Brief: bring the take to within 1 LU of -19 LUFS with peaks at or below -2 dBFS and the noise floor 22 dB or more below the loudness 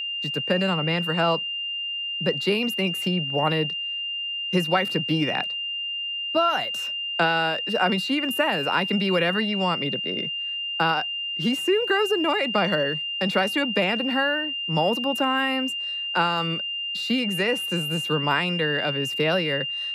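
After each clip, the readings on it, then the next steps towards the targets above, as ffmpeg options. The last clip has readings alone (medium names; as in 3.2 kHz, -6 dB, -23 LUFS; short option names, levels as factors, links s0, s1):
steady tone 2.8 kHz; tone level -27 dBFS; loudness -23.5 LUFS; peak level -9.0 dBFS; loudness target -19.0 LUFS
-> -af "bandreject=f=2800:w=30"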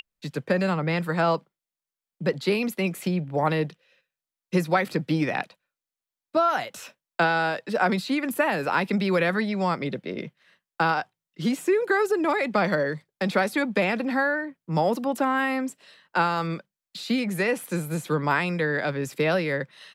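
steady tone not found; loudness -25.5 LUFS; peak level -10.0 dBFS; loudness target -19.0 LUFS
-> -af "volume=2.11"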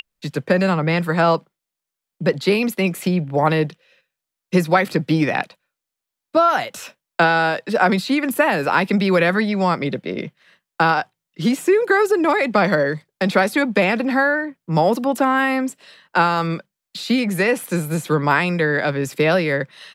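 loudness -19.0 LUFS; peak level -3.5 dBFS; noise floor -84 dBFS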